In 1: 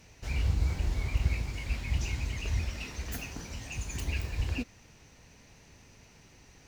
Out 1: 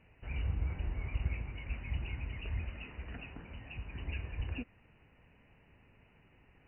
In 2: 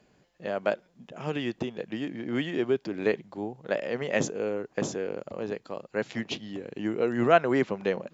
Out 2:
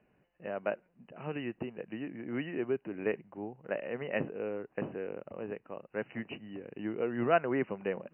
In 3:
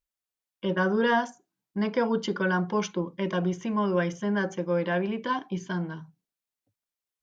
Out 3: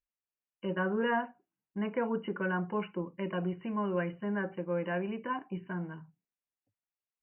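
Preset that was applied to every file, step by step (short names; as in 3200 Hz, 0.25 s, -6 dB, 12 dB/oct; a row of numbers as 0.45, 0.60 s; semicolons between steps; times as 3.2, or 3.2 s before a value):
brick-wall FIR low-pass 3000 Hz; gain -6.5 dB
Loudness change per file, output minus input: -6.5, -6.5, -6.5 LU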